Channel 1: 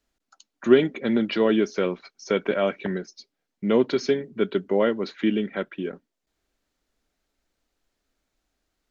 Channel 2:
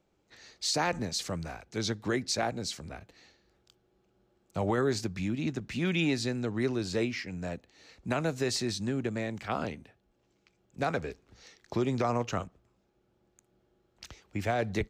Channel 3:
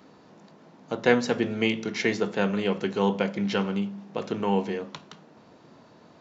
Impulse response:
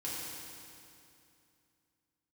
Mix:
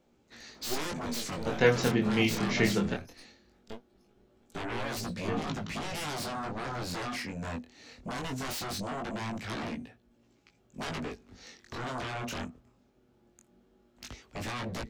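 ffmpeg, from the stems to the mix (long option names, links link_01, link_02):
-filter_complex "[0:a]equalizer=frequency=5400:width=1:gain=11,aeval=exprs='max(val(0),0)':channel_layout=same,volume=-13.5dB[link_01];[1:a]equalizer=frequency=240:width=6.8:gain=12.5,alimiter=limit=-21dB:level=0:latency=1:release=34,aeval=exprs='0.0891*sin(PI/2*3.98*val(0)/0.0891)':channel_layout=same,volume=-9dB,asplit=2[link_02][link_03];[2:a]asubboost=boost=7:cutoff=180,adelay=550,volume=1dB,asplit=3[link_04][link_05][link_06];[link_04]atrim=end=2.94,asetpts=PTS-STARTPTS,afade=type=out:start_time=2.936:duration=0.004:curve=hsin[link_07];[link_05]atrim=start=2.94:end=5.28,asetpts=PTS-STARTPTS,volume=0[link_08];[link_06]atrim=start=5.28,asetpts=PTS-STARTPTS,afade=type=in:duration=0.004:curve=hsin[link_09];[link_07][link_08][link_09]concat=n=3:v=0:a=1[link_10];[link_03]apad=whole_len=392648[link_11];[link_01][link_11]sidechaingate=range=-33dB:threshold=-57dB:ratio=16:detection=peak[link_12];[link_12][link_02][link_10]amix=inputs=3:normalize=0,flanger=delay=17.5:depth=6.8:speed=0.2"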